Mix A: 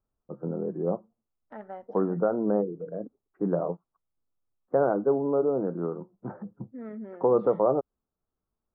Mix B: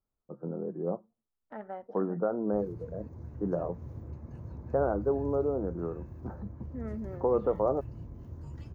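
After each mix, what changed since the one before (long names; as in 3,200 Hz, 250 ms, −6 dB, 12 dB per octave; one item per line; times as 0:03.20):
first voice −4.5 dB
background: unmuted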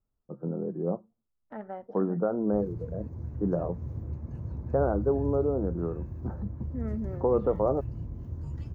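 master: add low-shelf EQ 260 Hz +7.5 dB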